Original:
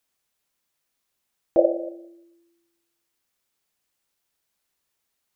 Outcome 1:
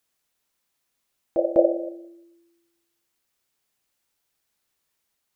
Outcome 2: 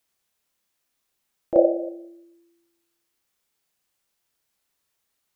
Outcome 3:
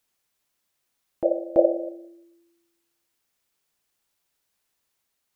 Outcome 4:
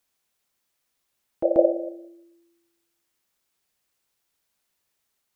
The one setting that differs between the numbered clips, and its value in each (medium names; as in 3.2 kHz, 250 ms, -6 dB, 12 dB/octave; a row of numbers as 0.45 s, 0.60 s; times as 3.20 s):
reverse echo, time: 200 ms, 32 ms, 333 ms, 136 ms